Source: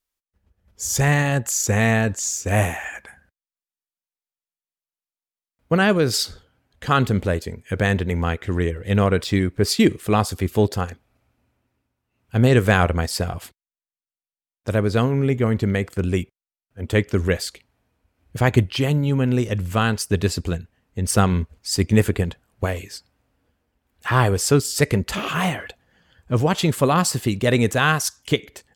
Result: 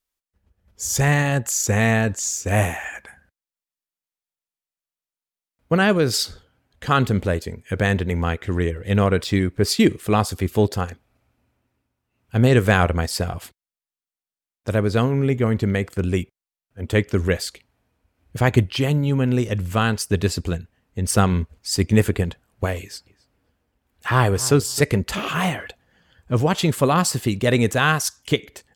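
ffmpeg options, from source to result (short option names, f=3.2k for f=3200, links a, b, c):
-filter_complex "[0:a]asettb=1/sr,asplit=3[a][b][c];[a]atrim=end=22.804[d];[b]atrim=start=22.8:end=24.83,asetpts=PTS-STARTPTS,afade=t=in:d=0.004:c=qsin,afade=t=out:st=2.026:d=0.004:c=qsin,asplit=2[e][f];[f]adelay=266,lowpass=f=1.9k:p=1,volume=-17.5dB,asplit=2[g][h];[h]adelay=266,lowpass=f=1.9k:p=1,volume=0.16[i];[e][g][i]amix=inputs=3:normalize=0,atrim=end_sample=89523[j];[c]atrim=start=24.826[k];[d][j]acrossfade=d=0.004:c1=hsin:c2=qsin[l];[l][k]acrossfade=d=0.004:c1=qsin:c2=hsin"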